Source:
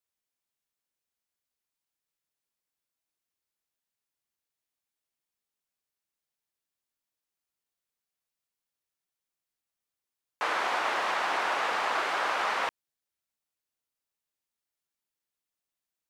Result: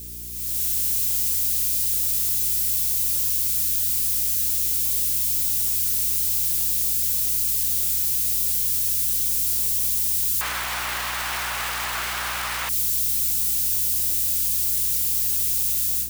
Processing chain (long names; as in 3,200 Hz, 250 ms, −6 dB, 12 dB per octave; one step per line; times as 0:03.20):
spike at every zero crossing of −28 dBFS
guitar amp tone stack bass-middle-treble 5-5-5
brickwall limiter −32.5 dBFS, peak gain reduction 5.5 dB
automatic gain control gain up to 16 dB
hum with harmonics 60 Hz, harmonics 7, −42 dBFS −7 dB per octave